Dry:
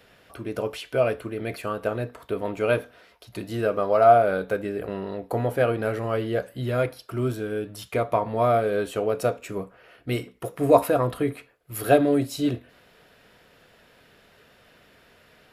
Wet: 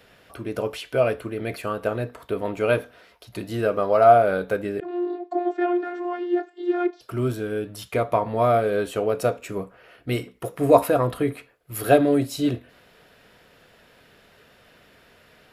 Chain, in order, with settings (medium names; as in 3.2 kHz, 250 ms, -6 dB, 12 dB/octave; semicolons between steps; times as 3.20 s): 4.80–7.01 s: vocoder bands 32, saw 353 Hz; trim +1.5 dB